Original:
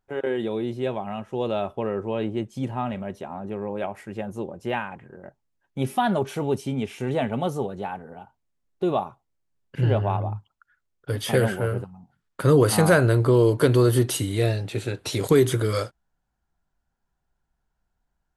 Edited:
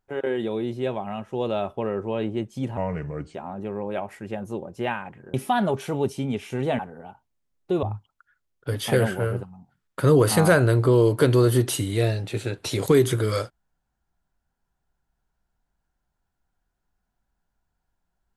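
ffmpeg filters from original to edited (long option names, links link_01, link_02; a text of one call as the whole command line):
ffmpeg -i in.wav -filter_complex "[0:a]asplit=6[link_01][link_02][link_03][link_04][link_05][link_06];[link_01]atrim=end=2.774[link_07];[link_02]atrim=start=2.77:end=3.21,asetpts=PTS-STARTPTS,asetrate=33516,aresample=44100[link_08];[link_03]atrim=start=3.206:end=5.202[link_09];[link_04]atrim=start=5.818:end=7.272[link_10];[link_05]atrim=start=7.908:end=8.952[link_11];[link_06]atrim=start=10.238[link_12];[link_07][link_08]acrossfade=duration=0.004:curve1=hsin:curve2=hsin[link_13];[link_13][link_09]acrossfade=duration=0.004:curve1=hsin:curve2=hsin[link_14];[link_14][link_10]acrossfade=duration=0.004:curve1=hsin:curve2=hsin[link_15];[link_15][link_11]acrossfade=duration=0.004:curve1=hsin:curve2=hsin[link_16];[link_16][link_12]acrossfade=duration=0.004:curve1=hsin:curve2=hsin" out.wav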